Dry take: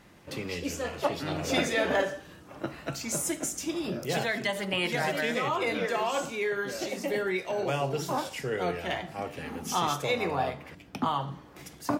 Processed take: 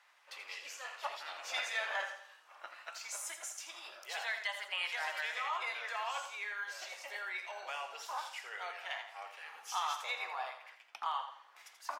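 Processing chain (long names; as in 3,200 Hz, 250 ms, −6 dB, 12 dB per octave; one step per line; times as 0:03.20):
high-pass filter 860 Hz 24 dB per octave
high-shelf EQ 7,800 Hz −10.5 dB
on a send: repeating echo 83 ms, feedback 36%, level −9.5 dB
on the sum: level −5.5 dB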